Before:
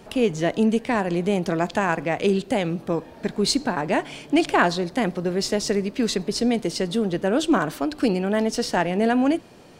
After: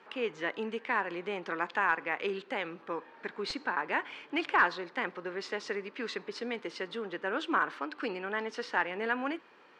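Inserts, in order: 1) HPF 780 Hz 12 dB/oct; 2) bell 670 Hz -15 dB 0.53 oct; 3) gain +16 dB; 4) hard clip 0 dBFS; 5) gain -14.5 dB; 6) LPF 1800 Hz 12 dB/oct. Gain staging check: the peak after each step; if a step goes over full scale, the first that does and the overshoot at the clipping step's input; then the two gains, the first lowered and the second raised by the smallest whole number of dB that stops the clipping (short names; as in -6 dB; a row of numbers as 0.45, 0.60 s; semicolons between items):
-6.5, -8.0, +8.0, 0.0, -14.5, -14.0 dBFS; step 3, 8.0 dB; step 3 +8 dB, step 5 -6.5 dB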